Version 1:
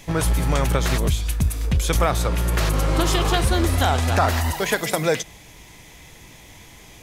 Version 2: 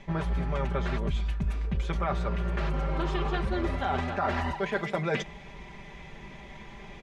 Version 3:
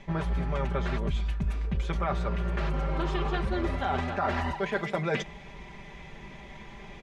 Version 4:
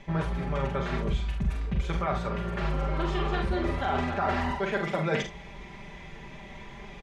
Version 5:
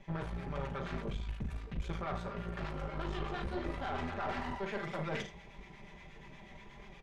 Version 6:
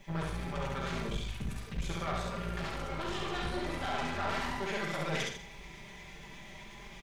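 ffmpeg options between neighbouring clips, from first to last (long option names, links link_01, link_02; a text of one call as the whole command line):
ffmpeg -i in.wav -af "lowpass=2300,aecho=1:1:5.1:0.79,areverse,acompressor=threshold=-26dB:ratio=6,areverse" out.wav
ffmpeg -i in.wav -af anull out.wav
ffmpeg -i in.wav -af "aecho=1:1:44|73:0.562|0.224" out.wav
ffmpeg -i in.wav -filter_complex "[0:a]acrossover=split=890[link_01][link_02];[link_01]aeval=exprs='val(0)*(1-0.5/2+0.5/2*cos(2*PI*8.4*n/s))':channel_layout=same[link_03];[link_02]aeval=exprs='val(0)*(1-0.5/2-0.5/2*cos(2*PI*8.4*n/s))':channel_layout=same[link_04];[link_03][link_04]amix=inputs=2:normalize=0,flanger=delay=5:depth=6.5:regen=-60:speed=1.6:shape=triangular,aeval=exprs='(tanh(31.6*val(0)+0.55)-tanh(0.55))/31.6':channel_layout=same" out.wav
ffmpeg -i in.wav -filter_complex "[0:a]crystalizer=i=3.5:c=0,asplit=2[link_01][link_02];[link_02]aecho=0:1:67.06|148.7:0.794|0.282[link_03];[link_01][link_03]amix=inputs=2:normalize=0" out.wav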